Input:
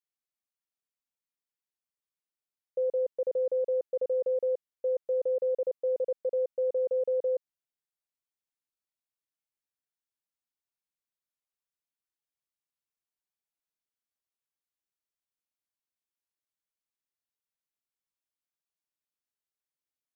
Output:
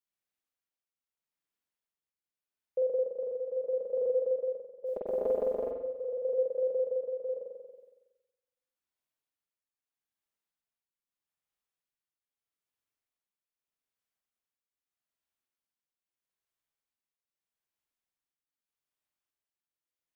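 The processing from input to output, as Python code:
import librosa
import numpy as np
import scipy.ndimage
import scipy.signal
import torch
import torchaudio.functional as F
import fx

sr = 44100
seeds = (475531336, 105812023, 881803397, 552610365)

y = fx.spec_clip(x, sr, under_db=27, at=(4.85, 5.7), fade=0.02)
y = fx.rev_spring(y, sr, rt60_s=1.2, pass_ms=(46,), chirp_ms=55, drr_db=-2.0)
y = fx.tremolo_shape(y, sr, shape='triangle', hz=0.8, depth_pct=65)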